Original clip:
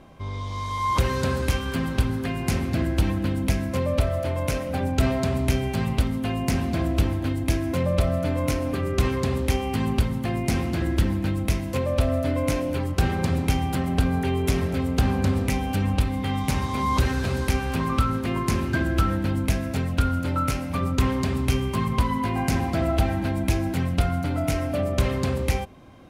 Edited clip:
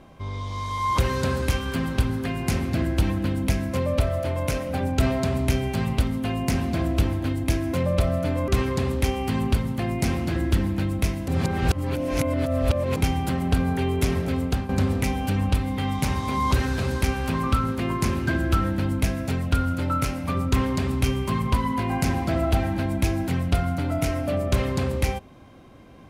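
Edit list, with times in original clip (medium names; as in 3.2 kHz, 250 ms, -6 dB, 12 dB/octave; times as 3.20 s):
8.48–8.94 s: delete
11.74–13.42 s: reverse
14.89–15.15 s: fade out, to -12.5 dB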